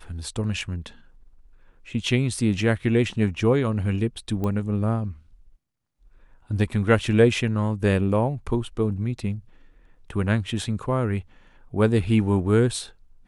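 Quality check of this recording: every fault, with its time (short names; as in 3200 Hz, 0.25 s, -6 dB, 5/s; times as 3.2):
4.44 pop -17 dBFS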